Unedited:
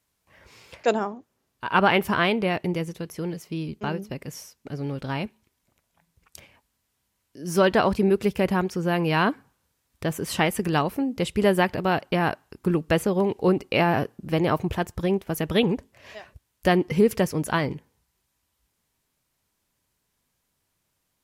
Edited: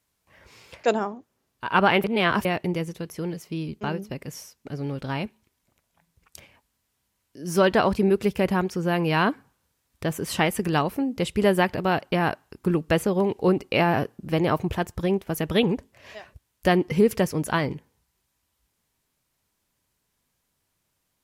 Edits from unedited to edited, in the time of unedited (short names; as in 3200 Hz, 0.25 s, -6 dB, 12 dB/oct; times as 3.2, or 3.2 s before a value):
2.04–2.45 reverse